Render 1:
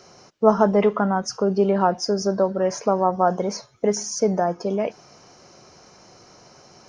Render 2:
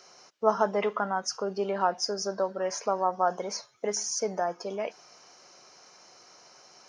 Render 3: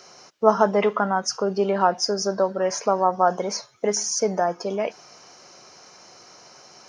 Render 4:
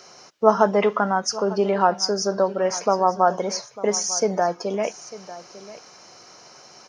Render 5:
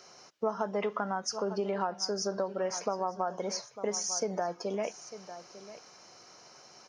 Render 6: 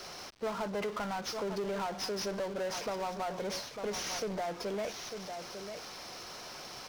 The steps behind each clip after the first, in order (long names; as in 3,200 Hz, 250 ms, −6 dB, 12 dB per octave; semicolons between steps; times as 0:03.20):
high-pass filter 980 Hz 6 dB per octave; level −2 dB
low-shelf EQ 230 Hz +7 dB; level +6 dB
single-tap delay 899 ms −17 dB; level +1 dB
downward compressor 6 to 1, threshold −20 dBFS, peak gain reduction 11 dB; level −7.5 dB
variable-slope delta modulation 32 kbit/s; power curve on the samples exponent 0.5; level −8.5 dB